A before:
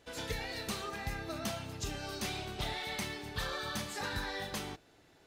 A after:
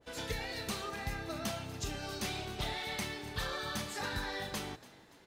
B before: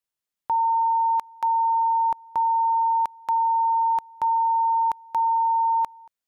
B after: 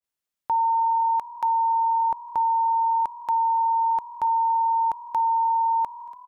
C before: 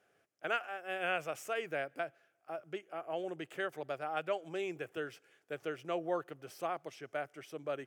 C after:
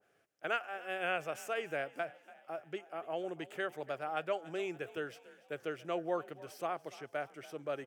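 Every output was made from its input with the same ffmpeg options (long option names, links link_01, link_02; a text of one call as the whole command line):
ffmpeg -i in.wav -filter_complex "[0:a]asplit=2[link_01][link_02];[link_02]asplit=4[link_03][link_04][link_05][link_06];[link_03]adelay=286,afreqshift=39,volume=-19dB[link_07];[link_04]adelay=572,afreqshift=78,volume=-25.2dB[link_08];[link_05]adelay=858,afreqshift=117,volume=-31.4dB[link_09];[link_06]adelay=1144,afreqshift=156,volume=-37.6dB[link_10];[link_07][link_08][link_09][link_10]amix=inputs=4:normalize=0[link_11];[link_01][link_11]amix=inputs=2:normalize=0,adynamicequalizer=threshold=0.0126:dfrequency=1600:dqfactor=0.7:tfrequency=1600:tqfactor=0.7:attack=5:release=100:ratio=0.375:range=4:mode=cutabove:tftype=highshelf" out.wav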